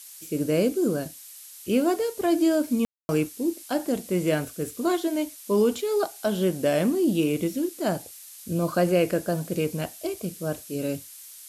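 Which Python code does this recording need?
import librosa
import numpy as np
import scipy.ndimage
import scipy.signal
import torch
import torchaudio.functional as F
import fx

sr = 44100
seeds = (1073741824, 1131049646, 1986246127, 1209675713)

y = fx.fix_ambience(x, sr, seeds[0], print_start_s=1.11, print_end_s=1.61, start_s=2.85, end_s=3.09)
y = fx.noise_reduce(y, sr, print_start_s=1.11, print_end_s=1.61, reduce_db=25.0)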